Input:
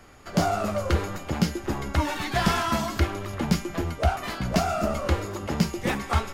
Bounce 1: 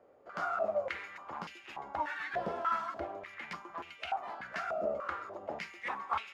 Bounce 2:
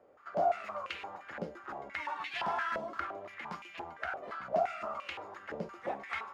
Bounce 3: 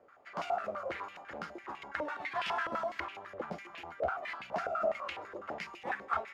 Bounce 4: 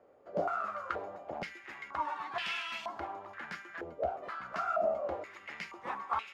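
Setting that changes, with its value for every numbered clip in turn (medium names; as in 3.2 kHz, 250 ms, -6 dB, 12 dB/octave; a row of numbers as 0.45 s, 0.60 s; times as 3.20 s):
step-sequenced band-pass, rate: 3.4 Hz, 5.8 Hz, 12 Hz, 2.1 Hz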